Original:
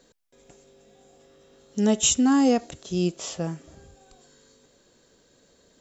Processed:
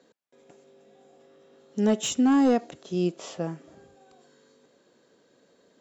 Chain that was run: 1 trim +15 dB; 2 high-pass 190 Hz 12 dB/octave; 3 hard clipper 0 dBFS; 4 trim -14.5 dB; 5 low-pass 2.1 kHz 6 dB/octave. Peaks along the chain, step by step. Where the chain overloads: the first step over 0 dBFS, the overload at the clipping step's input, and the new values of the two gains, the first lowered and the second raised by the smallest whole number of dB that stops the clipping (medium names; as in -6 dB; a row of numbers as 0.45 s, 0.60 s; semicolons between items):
+7.0 dBFS, +7.0 dBFS, 0.0 dBFS, -14.5 dBFS, -14.5 dBFS; step 1, 7.0 dB; step 1 +8 dB, step 4 -7.5 dB